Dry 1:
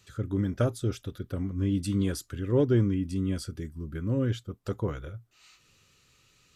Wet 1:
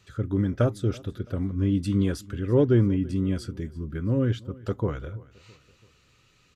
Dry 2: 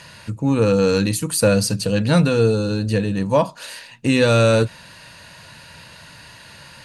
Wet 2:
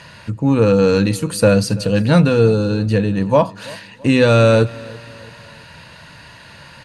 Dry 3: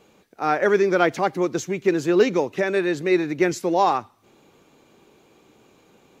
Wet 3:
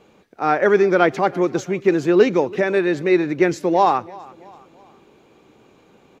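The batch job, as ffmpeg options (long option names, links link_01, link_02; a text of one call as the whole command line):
ffmpeg -i in.wav -af "highshelf=frequency=5400:gain=-11,aecho=1:1:332|664|996:0.0794|0.0365|0.0168,volume=3.5dB" out.wav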